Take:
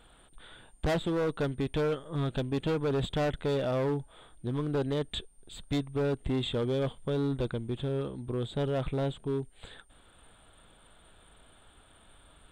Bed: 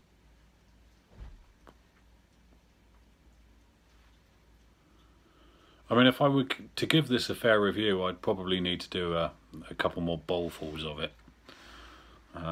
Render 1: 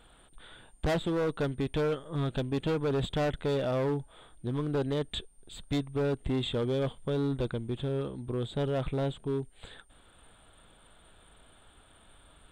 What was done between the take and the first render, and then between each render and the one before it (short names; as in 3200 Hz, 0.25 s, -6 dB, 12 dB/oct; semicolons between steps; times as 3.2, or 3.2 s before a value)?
nothing audible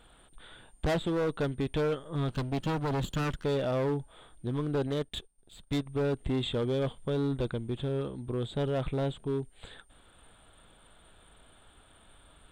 2.28–3.45 minimum comb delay 0.69 ms; 4.87–5.86 power-law curve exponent 1.4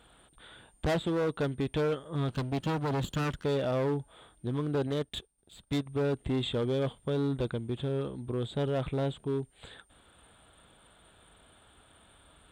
HPF 51 Hz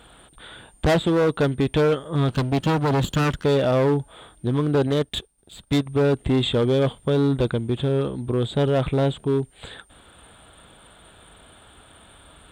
gain +10 dB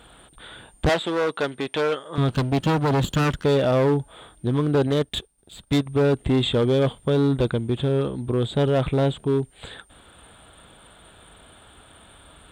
0.89–2.18 weighting filter A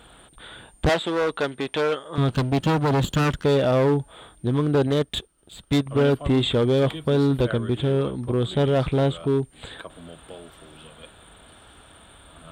add bed -11 dB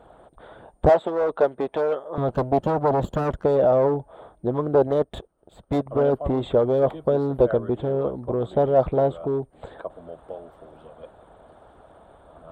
EQ curve 280 Hz 0 dB, 640 Hz +11 dB, 2700 Hz -15 dB; harmonic-percussive split harmonic -7 dB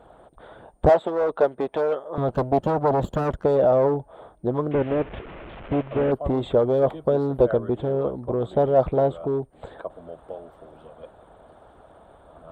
4.71–6.12 delta modulation 16 kbps, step -33.5 dBFS